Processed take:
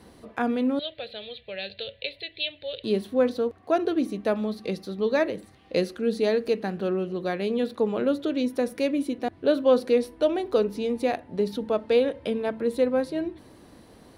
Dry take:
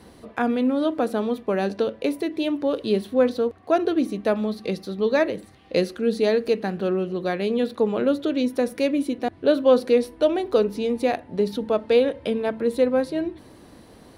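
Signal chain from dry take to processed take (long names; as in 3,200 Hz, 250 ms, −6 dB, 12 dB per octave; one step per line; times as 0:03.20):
0:00.79–0:02.84: drawn EQ curve 120 Hz 0 dB, 270 Hz −29 dB, 560 Hz −6 dB, 1,100 Hz −25 dB, 1,800 Hz −2 dB, 2,600 Hz +7 dB, 4,100 Hz +11 dB, 5,900 Hz −27 dB
level −3 dB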